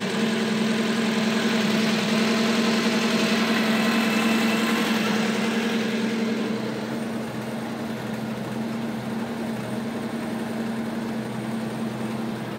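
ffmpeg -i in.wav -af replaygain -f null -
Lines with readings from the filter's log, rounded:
track_gain = +5.3 dB
track_peak = 0.189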